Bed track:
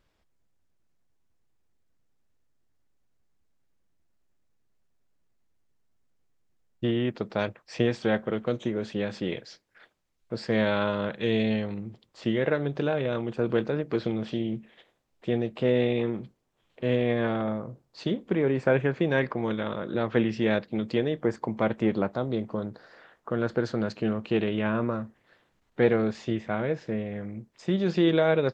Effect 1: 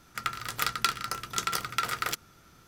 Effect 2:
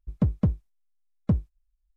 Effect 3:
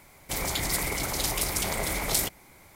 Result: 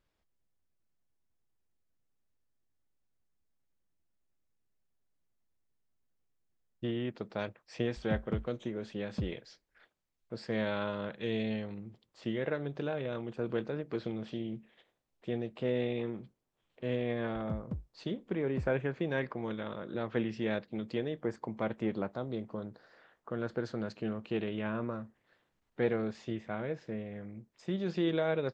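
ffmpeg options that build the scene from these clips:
ffmpeg -i bed.wav -i cue0.wav -i cue1.wav -filter_complex "[2:a]asplit=2[link_01][link_02];[0:a]volume=-8.5dB[link_03];[link_01]atrim=end=1.96,asetpts=PTS-STARTPTS,volume=-13dB,afade=type=in:duration=0.004:curve=hsin,afade=type=out:start_time=1.956:duration=0.004:curve=hsin,adelay=7890[link_04];[link_02]atrim=end=1.96,asetpts=PTS-STARTPTS,volume=-15.5dB,afade=type=in:duration=0.004:curve=hsin,afade=type=out:start_time=1.956:duration=0.004:curve=hsin,adelay=17280[link_05];[link_03][link_04][link_05]amix=inputs=3:normalize=0" out.wav

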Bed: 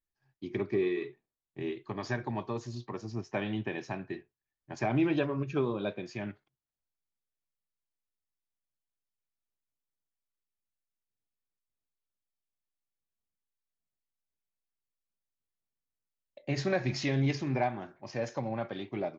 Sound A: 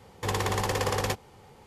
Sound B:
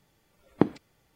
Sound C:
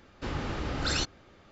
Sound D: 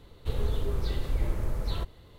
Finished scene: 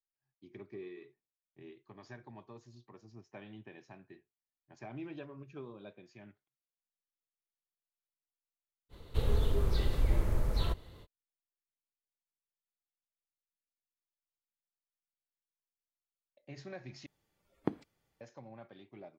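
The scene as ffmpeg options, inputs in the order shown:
ffmpeg -i bed.wav -i cue0.wav -i cue1.wav -i cue2.wav -i cue3.wav -filter_complex "[0:a]volume=-16.5dB,asplit=2[link_01][link_02];[link_01]atrim=end=17.064[link_03];[2:a]atrim=end=1.15,asetpts=PTS-STARTPTS,volume=-12dB[link_04];[link_02]atrim=start=18.206[link_05];[4:a]atrim=end=2.18,asetpts=PTS-STARTPTS,volume=-0.5dB,afade=type=in:duration=0.05,afade=type=out:start_time=2.13:duration=0.05,adelay=8890[link_06];[link_03][link_04]acrossfade=duration=0.004:curve1=hsin:curve2=hsin[link_07];[link_07][link_05]acrossfade=duration=0.004:curve1=hsin:curve2=hsin[link_08];[link_08][link_06]amix=inputs=2:normalize=0" out.wav

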